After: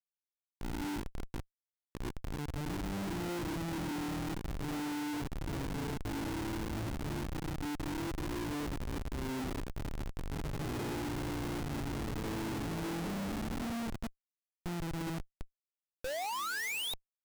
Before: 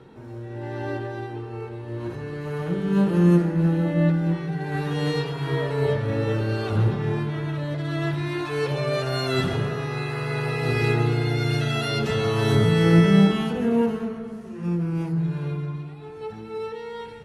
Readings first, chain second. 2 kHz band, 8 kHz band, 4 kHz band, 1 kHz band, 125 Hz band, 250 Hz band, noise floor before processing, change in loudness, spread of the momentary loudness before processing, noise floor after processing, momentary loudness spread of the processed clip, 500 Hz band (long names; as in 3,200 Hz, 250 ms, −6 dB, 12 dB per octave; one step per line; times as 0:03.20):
−11.5 dB, −1.0 dB, −10.5 dB, −9.5 dB, −18.0 dB, −14.5 dB, −38 dBFS, −14.5 dB, 15 LU, below −85 dBFS, 7 LU, −17.5 dB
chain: formant filter u
sound drawn into the spectrogram rise, 0:16.04–0:16.94, 490–3,900 Hz −32 dBFS
comparator with hysteresis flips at −37 dBFS